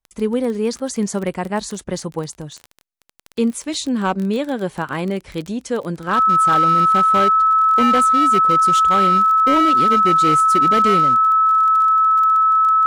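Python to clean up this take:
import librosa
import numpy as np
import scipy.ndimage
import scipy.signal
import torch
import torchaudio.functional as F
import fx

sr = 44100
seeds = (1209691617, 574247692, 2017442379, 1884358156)

y = fx.fix_declip(x, sr, threshold_db=-10.0)
y = fx.fix_declick_ar(y, sr, threshold=6.5)
y = fx.notch(y, sr, hz=1300.0, q=30.0)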